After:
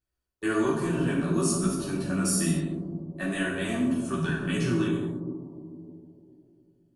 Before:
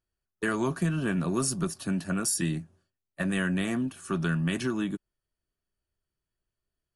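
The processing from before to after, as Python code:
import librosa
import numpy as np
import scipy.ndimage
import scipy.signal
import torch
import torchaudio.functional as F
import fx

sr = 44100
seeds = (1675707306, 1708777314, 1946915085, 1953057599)

y = fx.echo_bbd(x, sr, ms=147, stages=1024, feedback_pct=74, wet_db=-6.0)
y = fx.chorus_voices(y, sr, voices=2, hz=0.51, base_ms=15, depth_ms=3.2, mix_pct=50)
y = fx.rev_gated(y, sr, seeds[0], gate_ms=250, shape='falling', drr_db=-1.5)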